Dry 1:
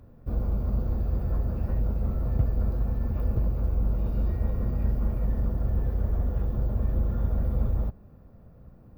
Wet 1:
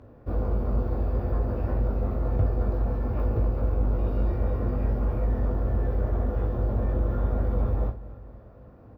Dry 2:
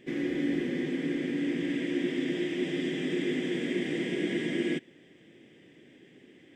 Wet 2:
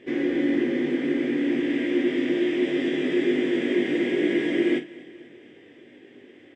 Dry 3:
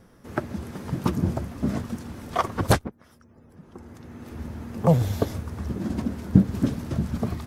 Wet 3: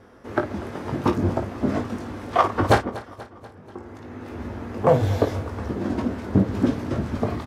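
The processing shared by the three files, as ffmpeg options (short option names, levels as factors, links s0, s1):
-filter_complex "[0:a]equalizer=f=170:t=o:w=0.53:g=-13.5,asplit=2[s0][s1];[s1]aecho=0:1:242|484|726|968:0.1|0.056|0.0314|0.0176[s2];[s0][s2]amix=inputs=2:normalize=0,asoftclip=type=tanh:threshold=0.2,highpass=f=130:p=1,aemphasis=mode=reproduction:type=75kf,asplit=2[s3][s4];[s4]aecho=0:1:20|53:0.501|0.282[s5];[s3][s5]amix=inputs=2:normalize=0,volume=2.37"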